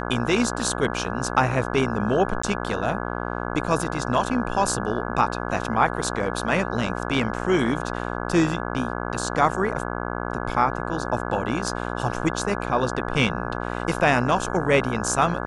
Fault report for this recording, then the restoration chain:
buzz 60 Hz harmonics 28 -29 dBFS
2.42–2.43 s: dropout 14 ms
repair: de-hum 60 Hz, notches 28; interpolate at 2.42 s, 14 ms

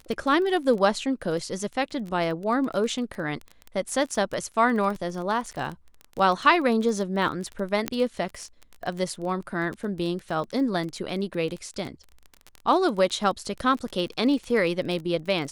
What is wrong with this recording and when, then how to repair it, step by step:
crackle 22 per s -30 dBFS
7.88 s: pop -9 dBFS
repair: de-click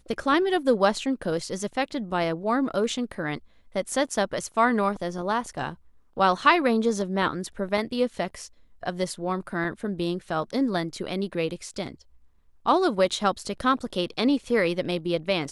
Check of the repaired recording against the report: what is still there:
nothing left

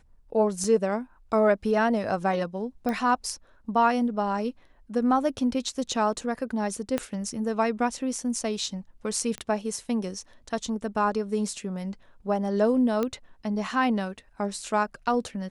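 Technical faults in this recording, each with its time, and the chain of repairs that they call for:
0.64 s: dropout 2.6 ms
2.89 s: pop -17 dBFS
6.98 s: pop -13 dBFS
9.38 s: pop -20 dBFS
13.03 s: pop -15 dBFS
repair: de-click; interpolate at 0.64 s, 2.6 ms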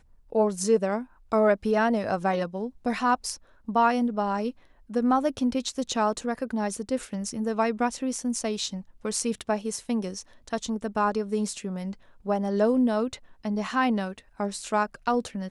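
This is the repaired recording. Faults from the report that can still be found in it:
2.89 s: pop
6.98 s: pop

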